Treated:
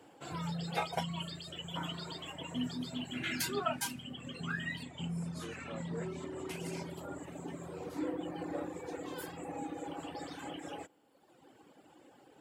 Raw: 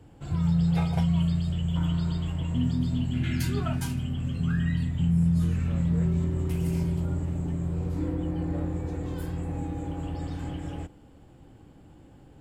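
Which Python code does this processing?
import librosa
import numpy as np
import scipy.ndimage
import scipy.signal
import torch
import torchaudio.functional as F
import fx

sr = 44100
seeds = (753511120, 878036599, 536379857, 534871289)

y = fx.lowpass(x, sr, hz=8800.0, slope=12, at=(4.83, 6.9))
y = fx.dereverb_blind(y, sr, rt60_s=1.4)
y = scipy.signal.sosfilt(scipy.signal.butter(2, 410.0, 'highpass', fs=sr, output='sos'), y)
y = F.gain(torch.from_numpy(y), 3.0).numpy()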